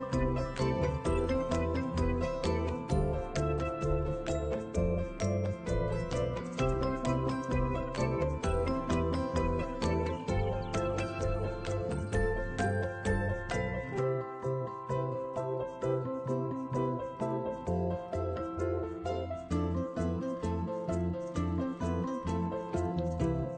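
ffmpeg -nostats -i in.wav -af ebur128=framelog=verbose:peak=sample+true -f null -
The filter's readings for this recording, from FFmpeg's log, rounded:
Integrated loudness:
  I:         -33.6 LUFS
  Threshold: -43.6 LUFS
Loudness range:
  LRA:         2.5 LU
  Threshold: -53.7 LUFS
  LRA low:   -34.9 LUFS
  LRA high:  -32.5 LUFS
Sample peak:
  Peak:      -18.8 dBFS
True peak:
  Peak:      -18.7 dBFS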